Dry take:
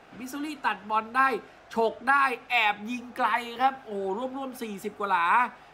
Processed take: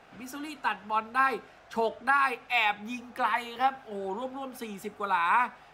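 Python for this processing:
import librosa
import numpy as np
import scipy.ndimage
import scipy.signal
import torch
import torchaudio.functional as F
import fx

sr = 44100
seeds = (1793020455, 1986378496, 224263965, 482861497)

y = fx.peak_eq(x, sr, hz=320.0, db=-4.0, octaves=0.85)
y = y * librosa.db_to_amplitude(-2.0)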